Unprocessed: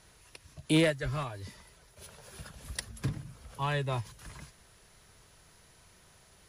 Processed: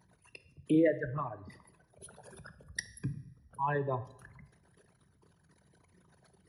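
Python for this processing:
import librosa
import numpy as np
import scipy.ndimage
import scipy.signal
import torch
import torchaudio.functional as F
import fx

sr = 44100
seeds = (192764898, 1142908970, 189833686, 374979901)

y = fx.envelope_sharpen(x, sr, power=3.0)
y = scipy.signal.sosfilt(scipy.signal.butter(2, 140.0, 'highpass', fs=sr, output='sos'), y)
y = fx.rev_double_slope(y, sr, seeds[0], early_s=0.67, late_s=1.7, knee_db=-18, drr_db=11.5)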